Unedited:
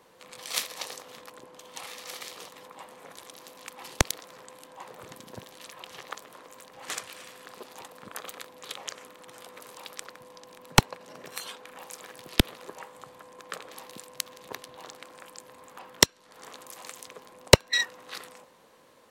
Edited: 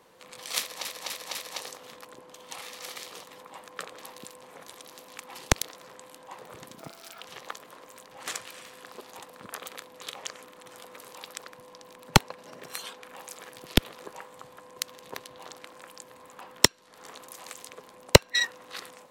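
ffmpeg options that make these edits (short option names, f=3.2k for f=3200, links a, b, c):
-filter_complex "[0:a]asplit=9[a][b][c][d][e][f][g][h][i];[a]atrim=end=0.852[j];[b]atrim=start=0.598:end=0.852[k];[c]atrim=start=0.598:end=0.852[l];[d]atrim=start=0.598:end=2.922[m];[e]atrim=start=13.398:end=14.162[n];[f]atrim=start=2.918:end=5.284[o];[g]atrim=start=5.28:end=5.84,asetpts=PTS-STARTPTS,asetrate=57771,aresample=44100[p];[h]atrim=start=5.836:end=13.402[q];[i]atrim=start=14.158[r];[j][k]acrossfade=d=0.004:c1=hsin:c2=hsin[s];[s][l]acrossfade=d=0.004:c1=hsin:c2=hsin[t];[t][m]acrossfade=d=0.004:c1=hsin:c2=hsin[u];[u][n]acrossfade=d=0.004:c1=hsin:c2=hsin[v];[v][o]acrossfade=d=0.004:c1=hsin:c2=hsin[w];[w][p]acrossfade=d=0.004:c1=hsin:c2=hsin[x];[x][q]acrossfade=d=0.004:c1=hsin:c2=hsin[y];[y][r]acrossfade=d=0.004:c1=hsin:c2=hsin"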